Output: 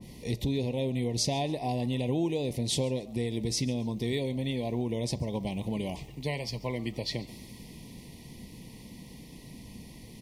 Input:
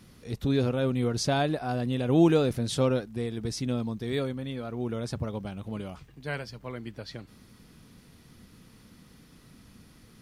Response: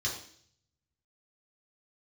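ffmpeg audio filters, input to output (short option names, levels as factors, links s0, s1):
-filter_complex "[0:a]acompressor=threshold=0.0178:ratio=6,asuperstop=centerf=1400:order=12:qfactor=1.7,asplit=3[s0][s1][s2];[s1]adelay=137,afreqshift=120,volume=0.0794[s3];[s2]adelay=274,afreqshift=240,volume=0.0263[s4];[s0][s3][s4]amix=inputs=3:normalize=0,asplit=2[s5][s6];[1:a]atrim=start_sample=2205[s7];[s6][s7]afir=irnorm=-1:irlink=0,volume=0.0794[s8];[s5][s8]amix=inputs=2:normalize=0,adynamicequalizer=threshold=0.00112:dfrequency=1600:dqfactor=0.7:tfrequency=1600:tqfactor=0.7:attack=5:release=100:ratio=0.375:range=2:mode=boostabove:tftype=highshelf,volume=2.24"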